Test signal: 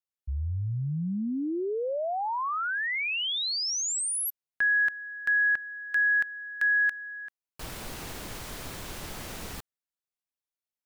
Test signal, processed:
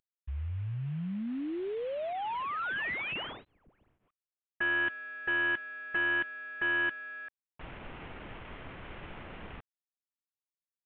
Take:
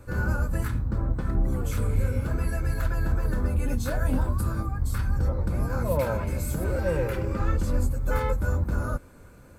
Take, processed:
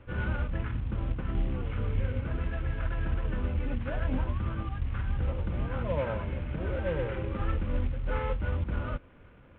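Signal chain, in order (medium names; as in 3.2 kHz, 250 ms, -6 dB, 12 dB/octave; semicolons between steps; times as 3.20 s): CVSD coder 16 kbps; trim -4.5 dB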